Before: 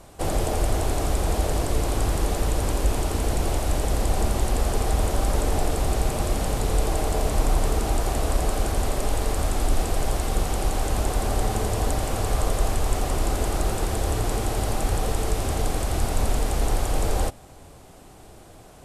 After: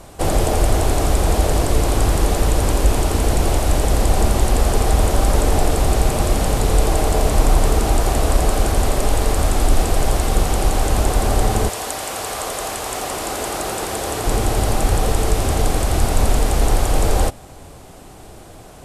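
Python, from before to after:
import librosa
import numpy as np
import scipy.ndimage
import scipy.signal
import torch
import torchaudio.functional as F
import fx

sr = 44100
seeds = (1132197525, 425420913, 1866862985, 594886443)

y = fx.highpass(x, sr, hz=fx.line((11.68, 1200.0), (14.25, 360.0)), slope=6, at=(11.68, 14.25), fade=0.02)
y = F.gain(torch.from_numpy(y), 7.0).numpy()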